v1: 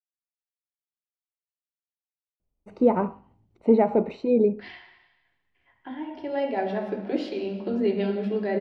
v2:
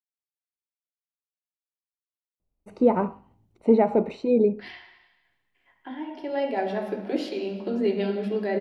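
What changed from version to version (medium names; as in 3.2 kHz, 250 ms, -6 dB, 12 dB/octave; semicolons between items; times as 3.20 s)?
second voice: add high-pass 160 Hz; master: remove distance through air 88 m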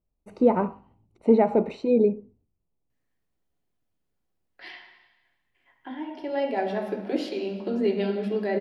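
first voice: entry -2.40 s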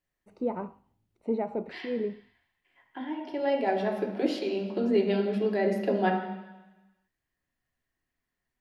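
first voice -11.0 dB; second voice: entry -2.90 s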